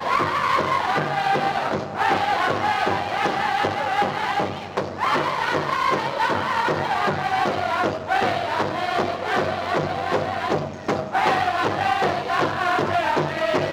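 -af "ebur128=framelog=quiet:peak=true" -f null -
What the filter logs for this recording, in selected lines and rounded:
Integrated loudness:
  I:         -22.3 LUFS
  Threshold: -32.3 LUFS
Loudness range:
  LRA:         1.5 LU
  Threshold: -42.5 LUFS
  LRA low:   -23.2 LUFS
  LRA high:  -21.7 LUFS
True peak:
  Peak:       -7.6 dBFS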